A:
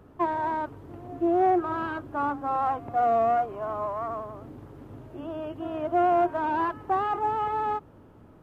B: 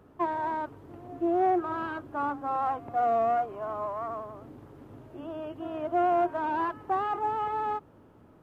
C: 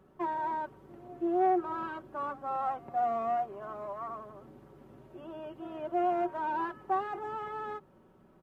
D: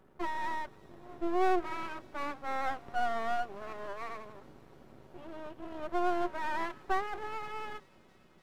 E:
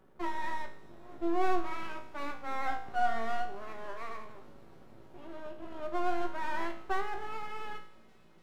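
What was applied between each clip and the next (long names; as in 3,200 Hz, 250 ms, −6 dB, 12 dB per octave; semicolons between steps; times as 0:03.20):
low-shelf EQ 100 Hz −6.5 dB; level −2.5 dB
comb filter 5.3 ms, depth 60%; level −5.5 dB
half-wave rectification; delay with a high-pass on its return 294 ms, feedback 83%, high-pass 3,400 Hz, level −19 dB; level +2.5 dB
tuned comb filter 56 Hz, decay 0.52 s, harmonics all, mix 80%; level +7 dB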